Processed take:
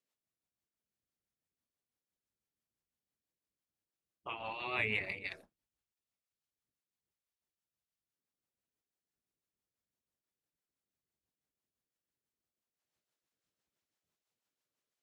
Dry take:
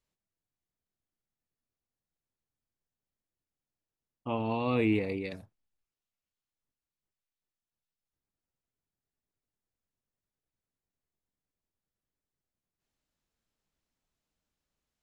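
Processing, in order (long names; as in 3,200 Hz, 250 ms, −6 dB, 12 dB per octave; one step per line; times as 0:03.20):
rotating-speaker cabinet horn 6 Hz
gate on every frequency bin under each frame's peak −10 dB weak
dynamic equaliser 1,900 Hz, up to +8 dB, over −54 dBFS, Q 1.1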